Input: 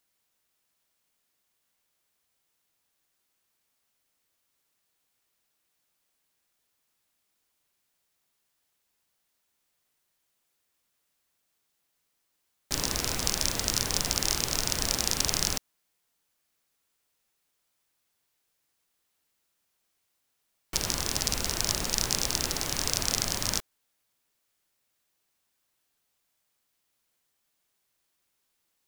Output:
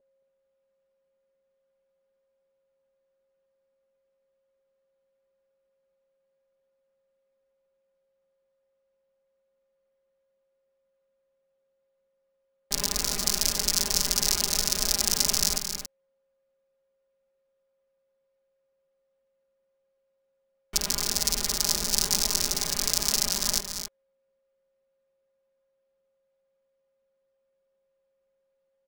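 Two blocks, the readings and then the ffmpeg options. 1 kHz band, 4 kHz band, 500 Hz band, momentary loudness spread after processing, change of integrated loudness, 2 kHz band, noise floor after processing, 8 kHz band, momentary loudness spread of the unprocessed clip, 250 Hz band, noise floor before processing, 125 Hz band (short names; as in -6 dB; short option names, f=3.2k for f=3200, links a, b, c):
-1.5 dB, +3.0 dB, -0.5 dB, 8 LU, +3.5 dB, -1.5 dB, -76 dBFS, +3.5 dB, 4 LU, -1.0 dB, -77 dBFS, -4.0 dB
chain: -filter_complex "[0:a]aeval=exprs='val(0)+0.000794*sin(2*PI*540*n/s)':c=same,aecho=1:1:4.9:0.99,adynamicsmooth=sensitivity=4.5:basefreq=1.4k,aemphasis=mode=production:type=50fm,asplit=2[a][b];[b]aecho=0:1:221.6|277:0.316|0.316[c];[a][c]amix=inputs=2:normalize=0,volume=-4.5dB"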